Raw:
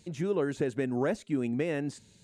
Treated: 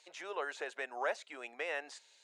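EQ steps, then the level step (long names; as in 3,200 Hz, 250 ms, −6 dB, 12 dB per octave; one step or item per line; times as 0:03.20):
high-pass filter 670 Hz 24 dB per octave
high-frequency loss of the air 54 metres
parametric band 8,100 Hz −2.5 dB 0.54 octaves
+2.0 dB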